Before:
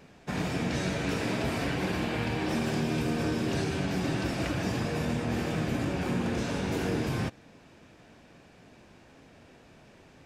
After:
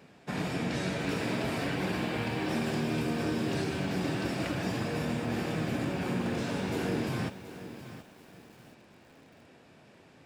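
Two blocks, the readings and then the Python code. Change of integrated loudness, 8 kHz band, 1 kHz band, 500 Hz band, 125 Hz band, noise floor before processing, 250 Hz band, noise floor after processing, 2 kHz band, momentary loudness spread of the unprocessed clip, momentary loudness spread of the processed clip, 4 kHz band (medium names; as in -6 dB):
-1.5 dB, -3.0 dB, -1.5 dB, -1.5 dB, -2.5 dB, -56 dBFS, -1.5 dB, -57 dBFS, -1.5 dB, 2 LU, 7 LU, -1.5 dB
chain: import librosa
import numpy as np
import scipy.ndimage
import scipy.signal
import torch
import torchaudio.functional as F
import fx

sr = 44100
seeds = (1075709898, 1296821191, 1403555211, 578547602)

y = scipy.signal.sosfilt(scipy.signal.butter(2, 100.0, 'highpass', fs=sr, output='sos'), x)
y = fx.peak_eq(y, sr, hz=6200.0, db=-5.0, octaves=0.2)
y = fx.echo_crushed(y, sr, ms=724, feedback_pct=35, bits=8, wet_db=-12.5)
y = y * 10.0 ** (-1.5 / 20.0)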